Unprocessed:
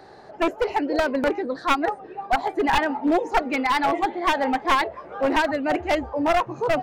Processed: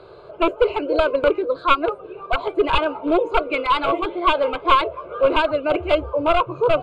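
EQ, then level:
high-frequency loss of the air 96 metres
phaser with its sweep stopped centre 1,200 Hz, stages 8
notch filter 1,900 Hz, Q 5.5
+7.5 dB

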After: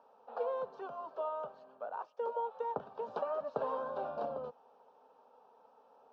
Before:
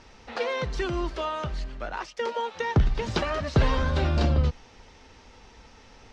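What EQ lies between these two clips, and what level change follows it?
four-pole ladder high-pass 330 Hz, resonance 50%
low-pass filter 1,300 Hz 12 dB per octave
phaser with its sweep stopped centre 840 Hz, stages 4
+3.5 dB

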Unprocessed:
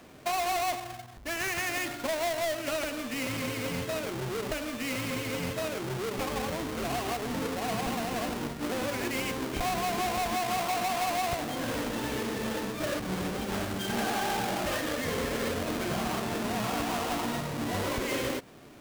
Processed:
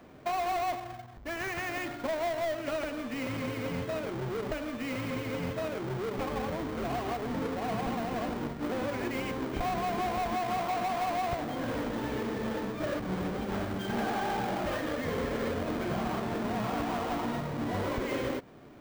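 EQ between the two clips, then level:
parametric band 11,000 Hz −13 dB 2.7 octaves
notch filter 2,700 Hz, Q 28
0.0 dB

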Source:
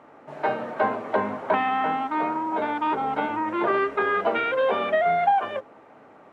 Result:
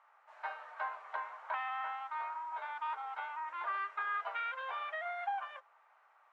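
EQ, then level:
high-pass filter 1,000 Hz 24 dB per octave
high-frequency loss of the air 57 metres
parametric band 3,000 Hz −5.5 dB 2.3 octaves
−7.0 dB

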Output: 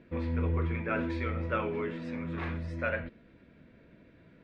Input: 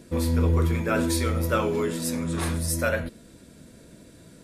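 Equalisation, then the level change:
transistor ladder low-pass 2,800 Hz, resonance 40%
0.0 dB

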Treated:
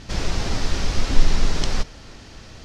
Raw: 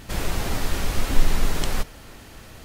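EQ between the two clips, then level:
low-pass with resonance 5,500 Hz, resonance Q 2.1
low-shelf EQ 400 Hz +3.5 dB
−1.0 dB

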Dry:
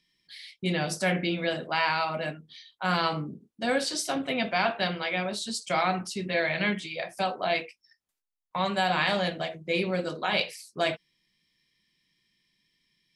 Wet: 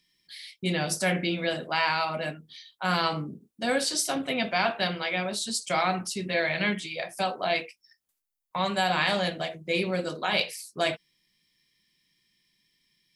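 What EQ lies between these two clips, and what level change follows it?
high-shelf EQ 8,000 Hz +10.5 dB
0.0 dB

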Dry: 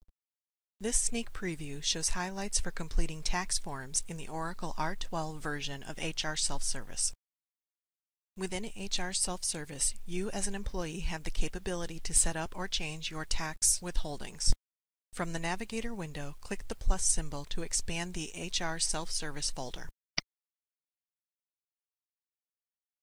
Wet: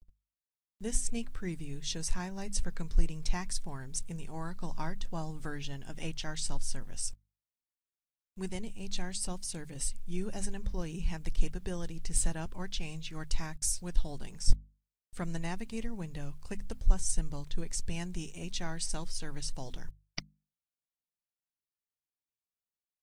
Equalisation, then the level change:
bass and treble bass +6 dB, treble +1 dB
low-shelf EQ 380 Hz +5 dB
mains-hum notches 50/100/150/200/250 Hz
−7.0 dB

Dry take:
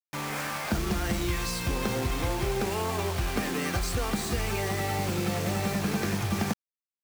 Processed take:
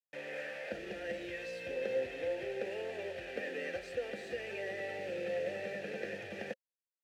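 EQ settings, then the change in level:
formant filter e
+3.0 dB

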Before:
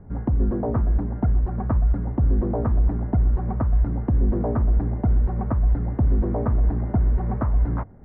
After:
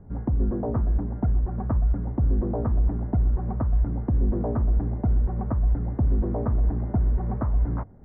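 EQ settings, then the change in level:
low-pass filter 1,500 Hz 6 dB per octave
−2.5 dB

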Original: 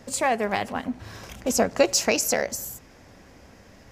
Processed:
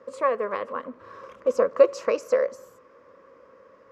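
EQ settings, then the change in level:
pair of resonant band-passes 760 Hz, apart 1.1 octaves
+8.5 dB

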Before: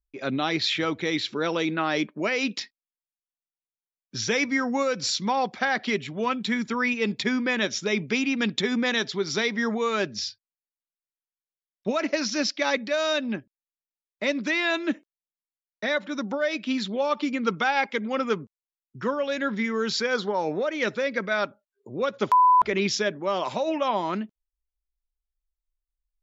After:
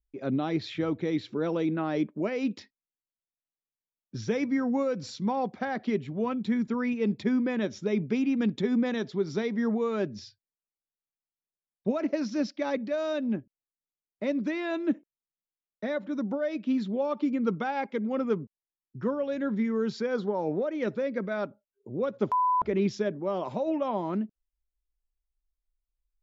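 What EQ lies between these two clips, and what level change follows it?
tilt shelving filter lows +9.5 dB
−7.5 dB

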